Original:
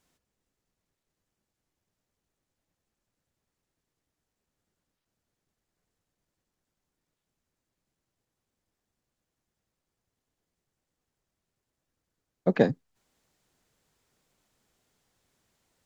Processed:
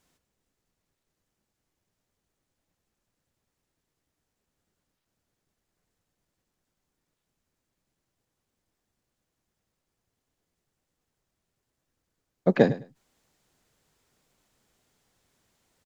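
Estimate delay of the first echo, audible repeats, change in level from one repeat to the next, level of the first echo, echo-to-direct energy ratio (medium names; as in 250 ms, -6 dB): 104 ms, 2, -15.5 dB, -16.0 dB, -16.0 dB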